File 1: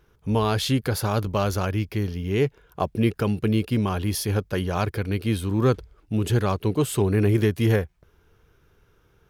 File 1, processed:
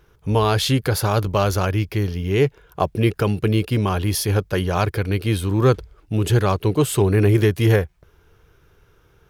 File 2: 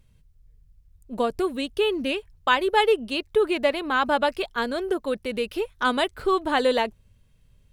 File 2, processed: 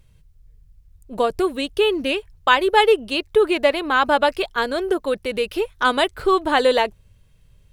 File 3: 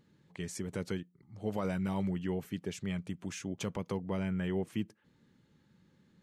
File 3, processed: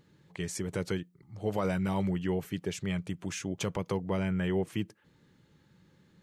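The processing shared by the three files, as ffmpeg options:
-af "equalizer=f=230:t=o:w=0.35:g=-7.5,volume=1.78"

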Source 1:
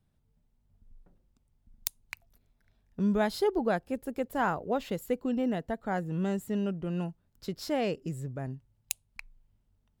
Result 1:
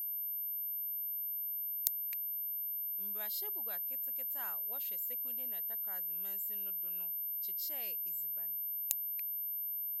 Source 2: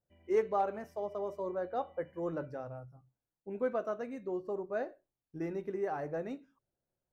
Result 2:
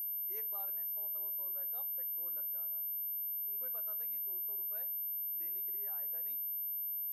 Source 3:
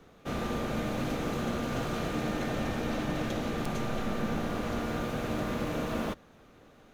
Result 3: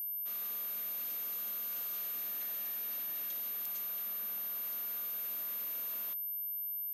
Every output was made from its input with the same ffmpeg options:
-af "aeval=exprs='val(0)+0.0141*sin(2*PI*13000*n/s)':c=same,aderivative,volume=0.708"

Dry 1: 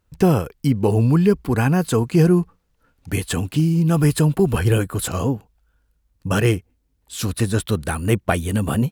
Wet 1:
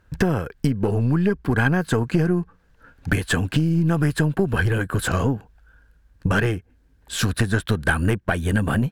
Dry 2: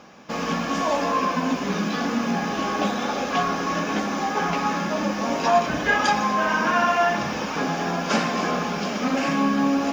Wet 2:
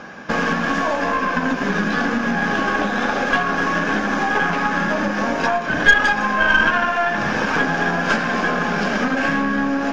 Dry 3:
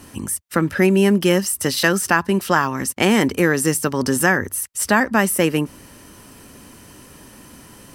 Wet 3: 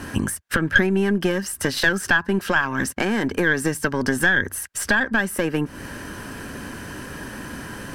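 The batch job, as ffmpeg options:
-af "acompressor=threshold=0.0447:ratio=10,aemphasis=mode=reproduction:type=cd,apsyclip=9.44,equalizer=f=1600:w=6.6:g=13.5,aeval=exprs='2.66*(cos(1*acos(clip(val(0)/2.66,-1,1)))-cos(1*PI/2))+0.376*(cos(4*acos(clip(val(0)/2.66,-1,1)))-cos(4*PI/2))':c=same,volume=0.299"

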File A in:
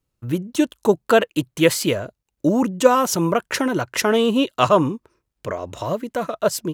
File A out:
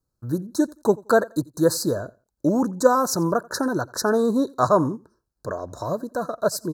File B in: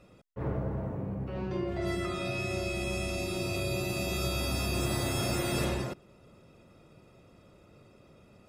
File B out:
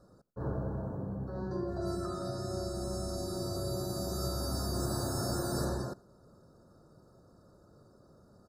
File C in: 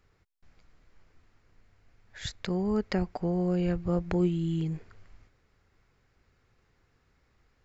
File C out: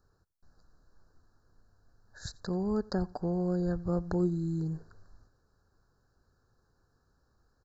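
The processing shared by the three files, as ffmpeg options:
-af "asuperstop=centerf=2600:order=20:qfactor=1.2,aecho=1:1:87|174:0.0631|0.0151,volume=0.75"

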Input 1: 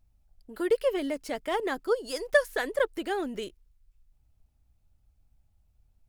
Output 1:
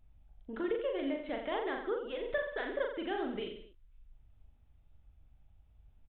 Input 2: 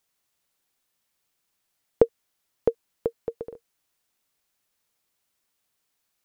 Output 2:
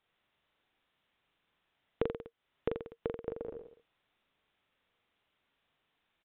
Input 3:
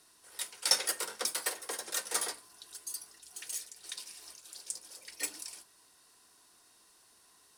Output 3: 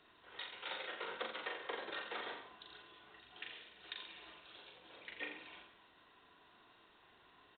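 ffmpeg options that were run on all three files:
-filter_complex "[0:a]acompressor=threshold=0.00891:ratio=2.5,asplit=2[s0][s1];[s1]aecho=0:1:40|84|132.4|185.6|244.2:0.631|0.398|0.251|0.158|0.1[s2];[s0][s2]amix=inputs=2:normalize=0,aresample=8000,aresample=44100,volume=1.26"

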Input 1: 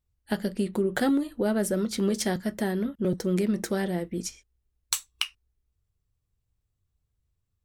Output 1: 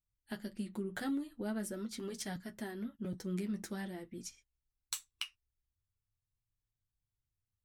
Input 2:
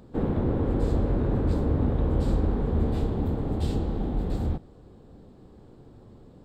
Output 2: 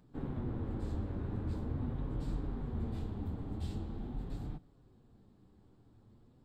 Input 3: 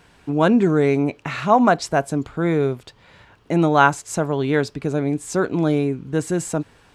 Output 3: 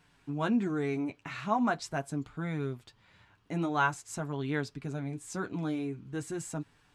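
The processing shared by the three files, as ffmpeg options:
-af "equalizer=f=510:t=o:w=0.95:g=-7.5,flanger=delay=6.6:depth=4:regen=-30:speed=0.44:shape=triangular,volume=0.398"

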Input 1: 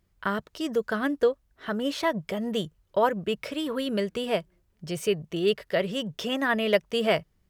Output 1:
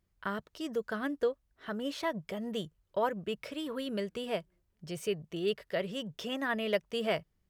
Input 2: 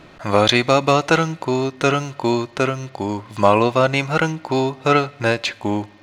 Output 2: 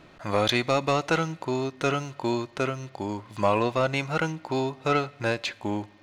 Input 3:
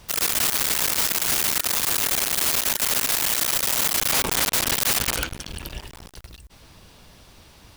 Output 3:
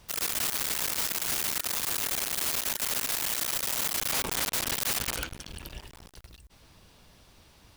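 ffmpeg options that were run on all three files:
-af "asoftclip=type=tanh:threshold=0.668,volume=0.422"

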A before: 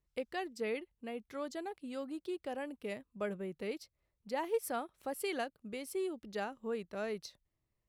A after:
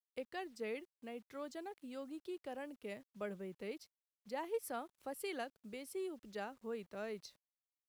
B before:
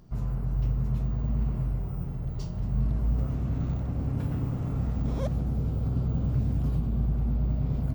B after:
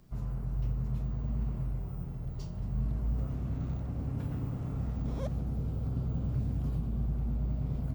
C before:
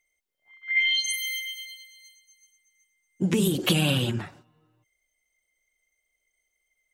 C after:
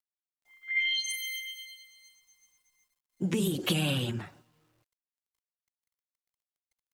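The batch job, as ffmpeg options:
-filter_complex "[0:a]acrossover=split=200|5800[s0][s1][s2];[s2]asoftclip=type=hard:threshold=0.0398[s3];[s0][s1][s3]amix=inputs=3:normalize=0,acrusher=bits=10:mix=0:aa=0.000001,volume=0.531"

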